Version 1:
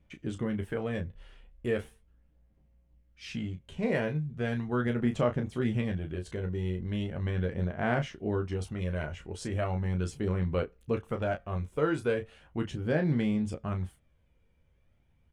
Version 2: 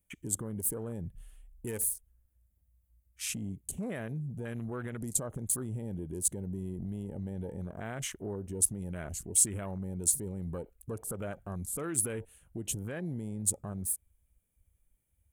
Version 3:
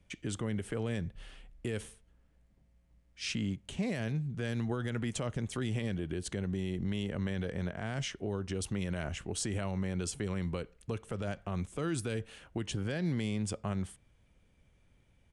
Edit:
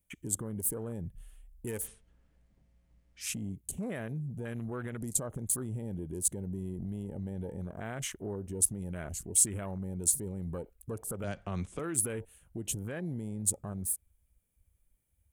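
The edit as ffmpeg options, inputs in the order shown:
-filter_complex "[2:a]asplit=2[s0][s1];[1:a]asplit=3[s2][s3][s4];[s2]atrim=end=1.88[s5];[s0]atrim=start=1.78:end=3.28[s6];[s3]atrim=start=3.18:end=11.242[s7];[s1]atrim=start=11.238:end=11.792[s8];[s4]atrim=start=11.788[s9];[s5][s6]acrossfade=d=0.1:c1=tri:c2=tri[s10];[s10][s7]acrossfade=d=0.1:c1=tri:c2=tri[s11];[s11][s8]acrossfade=d=0.004:c1=hsin:c2=hsin[s12];[s12][s9]acrossfade=d=0.004:c1=hsin:c2=hsin"

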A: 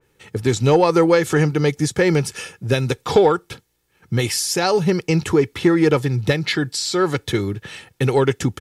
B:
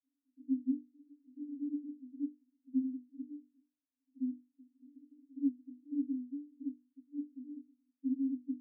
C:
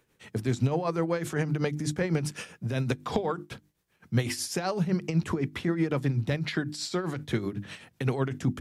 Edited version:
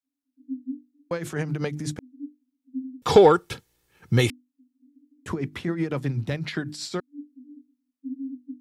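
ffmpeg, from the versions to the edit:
-filter_complex "[2:a]asplit=2[s0][s1];[1:a]asplit=4[s2][s3][s4][s5];[s2]atrim=end=1.112[s6];[s0]atrim=start=1.108:end=1.992[s7];[s3]atrim=start=1.988:end=3.022[s8];[0:a]atrim=start=3.018:end=4.302[s9];[s4]atrim=start=4.298:end=5.262[s10];[s1]atrim=start=5.258:end=7.002[s11];[s5]atrim=start=6.998[s12];[s6][s7]acrossfade=d=0.004:c1=hsin:c2=hsin[s13];[s13][s8]acrossfade=d=0.004:c1=hsin:c2=hsin[s14];[s14][s9]acrossfade=d=0.004:c1=hsin:c2=hsin[s15];[s15][s10]acrossfade=d=0.004:c1=hsin:c2=hsin[s16];[s16][s11]acrossfade=d=0.004:c1=hsin:c2=hsin[s17];[s17][s12]acrossfade=d=0.004:c1=hsin:c2=hsin"

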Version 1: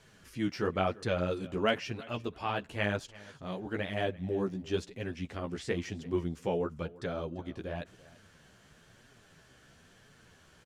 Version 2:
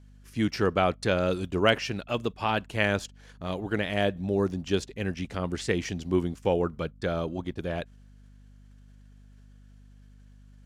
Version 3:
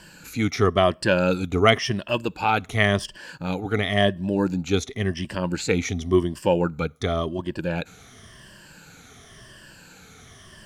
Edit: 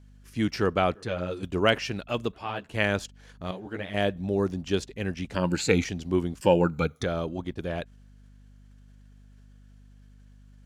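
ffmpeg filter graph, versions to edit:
-filter_complex "[0:a]asplit=3[s0][s1][s2];[2:a]asplit=2[s3][s4];[1:a]asplit=6[s5][s6][s7][s8][s9][s10];[s5]atrim=end=0.952[s11];[s0]atrim=start=0.948:end=1.432[s12];[s6]atrim=start=1.428:end=2.332[s13];[s1]atrim=start=2.328:end=2.742[s14];[s7]atrim=start=2.738:end=3.512[s15];[s2]atrim=start=3.508:end=3.942[s16];[s8]atrim=start=3.938:end=5.352[s17];[s3]atrim=start=5.348:end=5.842[s18];[s9]atrim=start=5.838:end=6.412[s19];[s4]atrim=start=6.408:end=7.042[s20];[s10]atrim=start=7.038[s21];[s11][s12]acrossfade=d=0.004:c1=hsin:c2=hsin[s22];[s22][s13]acrossfade=d=0.004:c1=hsin:c2=hsin[s23];[s23][s14]acrossfade=d=0.004:c1=hsin:c2=hsin[s24];[s24][s15]acrossfade=d=0.004:c1=hsin:c2=hsin[s25];[s25][s16]acrossfade=d=0.004:c1=hsin:c2=hsin[s26];[s26][s17]acrossfade=d=0.004:c1=hsin:c2=hsin[s27];[s27][s18]acrossfade=d=0.004:c1=hsin:c2=hsin[s28];[s28][s19]acrossfade=d=0.004:c1=hsin:c2=hsin[s29];[s29][s20]acrossfade=d=0.004:c1=hsin:c2=hsin[s30];[s30][s21]acrossfade=d=0.004:c1=hsin:c2=hsin"

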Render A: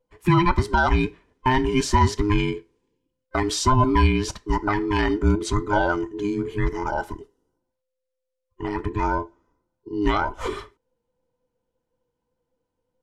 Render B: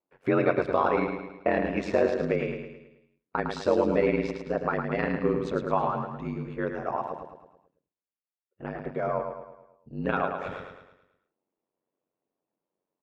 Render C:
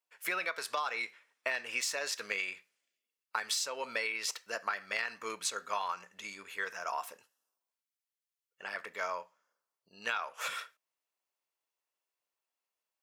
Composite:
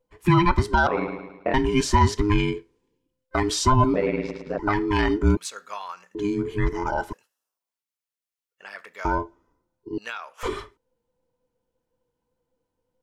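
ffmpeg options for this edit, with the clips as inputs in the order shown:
-filter_complex "[1:a]asplit=2[s0][s1];[2:a]asplit=3[s2][s3][s4];[0:a]asplit=6[s5][s6][s7][s8][s9][s10];[s5]atrim=end=0.872[s11];[s0]atrim=start=0.868:end=1.542[s12];[s6]atrim=start=1.538:end=3.942[s13];[s1]atrim=start=3.938:end=4.592[s14];[s7]atrim=start=4.588:end=5.372[s15];[s2]atrim=start=5.368:end=6.152[s16];[s8]atrim=start=6.148:end=7.132[s17];[s3]atrim=start=7.128:end=9.052[s18];[s9]atrim=start=9.048:end=9.982[s19];[s4]atrim=start=9.978:end=10.432[s20];[s10]atrim=start=10.428[s21];[s11][s12]acrossfade=d=0.004:c1=hsin:c2=hsin[s22];[s22][s13]acrossfade=d=0.004:c1=hsin:c2=hsin[s23];[s23][s14]acrossfade=d=0.004:c1=hsin:c2=hsin[s24];[s24][s15]acrossfade=d=0.004:c1=hsin:c2=hsin[s25];[s25][s16]acrossfade=d=0.004:c1=hsin:c2=hsin[s26];[s26][s17]acrossfade=d=0.004:c1=hsin:c2=hsin[s27];[s27][s18]acrossfade=d=0.004:c1=hsin:c2=hsin[s28];[s28][s19]acrossfade=d=0.004:c1=hsin:c2=hsin[s29];[s29][s20]acrossfade=d=0.004:c1=hsin:c2=hsin[s30];[s30][s21]acrossfade=d=0.004:c1=hsin:c2=hsin"

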